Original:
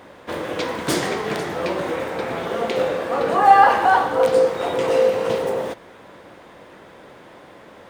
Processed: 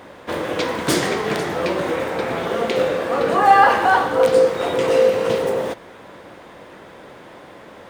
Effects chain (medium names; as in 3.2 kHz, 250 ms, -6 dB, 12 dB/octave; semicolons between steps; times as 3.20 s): dynamic bell 810 Hz, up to -4 dB, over -28 dBFS, Q 1.8; trim +3 dB